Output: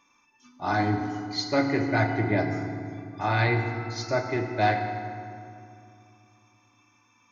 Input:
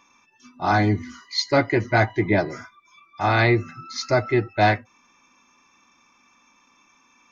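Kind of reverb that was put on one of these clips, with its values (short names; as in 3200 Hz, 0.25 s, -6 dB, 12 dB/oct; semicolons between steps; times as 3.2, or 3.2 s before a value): FDN reverb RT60 2.5 s, low-frequency decay 1.4×, high-frequency decay 0.6×, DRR 3.5 dB; gain -7 dB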